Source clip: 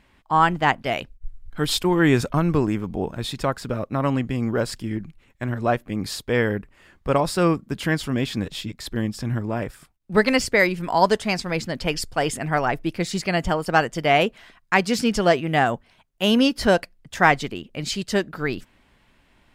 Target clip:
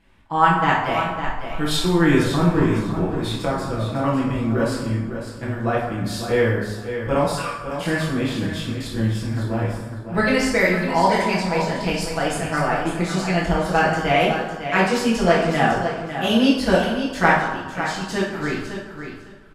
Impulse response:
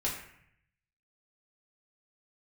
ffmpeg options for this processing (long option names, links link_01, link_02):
-filter_complex "[0:a]asettb=1/sr,asplit=3[link_01][link_02][link_03];[link_01]atrim=end=7.264[link_04];[link_02]atrim=start=7.26:end=7.85,asetpts=PTS-STARTPTS,afade=type=in:duration=0.004:curve=qsin,afade=type=out:start_time=0.586:duration=0.004:curve=qsin,highpass=frequency=1300:width=0.5412,highpass=frequency=1300:width=1.3066[link_05];[link_03]atrim=start=7.846[link_06];[link_04][link_05]acrossfade=duration=0.004:curve1=hsin:curve2=qsin[link_07];[link_07][link_06]acrossfade=duration=0.004:curve1=qsin:curve2=hsin,asettb=1/sr,asplit=3[link_08][link_09][link_10];[link_08]atrim=end=17.304[link_11];[link_09]atrim=start=17.3:end=18.01,asetpts=PTS-STARTPTS,afade=type=in:duration=0.004:curve=qsin,afade=type=out:start_time=0.706:duration=0.004:curve=qsin,acompressor=threshold=-28dB:ratio=6[link_12];[link_10]atrim=start=18.006[link_13];[link_11][link_12]acrossfade=duration=0.004:curve1=hsin:curve2=qsin[link_14];[link_14][link_13]acrossfade=duration=0.004:curve1=qsin:curve2=hsin,aecho=1:1:553|1106|1659:0.355|0.0639|0.0115[link_15];[1:a]atrim=start_sample=2205,asetrate=27342,aresample=44100[link_16];[link_15][link_16]afir=irnorm=-1:irlink=0,volume=-7.5dB"